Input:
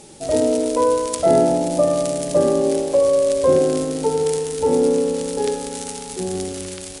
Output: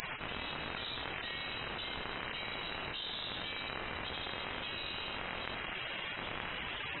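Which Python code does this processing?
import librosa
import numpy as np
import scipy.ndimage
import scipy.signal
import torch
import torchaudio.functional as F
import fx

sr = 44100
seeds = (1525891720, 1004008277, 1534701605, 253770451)

y = fx.spec_gate(x, sr, threshold_db=-30, keep='weak')
y = fx.freq_invert(y, sr, carrier_hz=3900)
y = fx.env_flatten(y, sr, amount_pct=100)
y = y * librosa.db_to_amplitude(-5.5)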